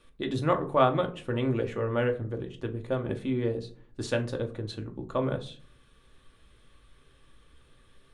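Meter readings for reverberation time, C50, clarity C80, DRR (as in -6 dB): 0.50 s, 15.0 dB, 20.5 dB, 4.0 dB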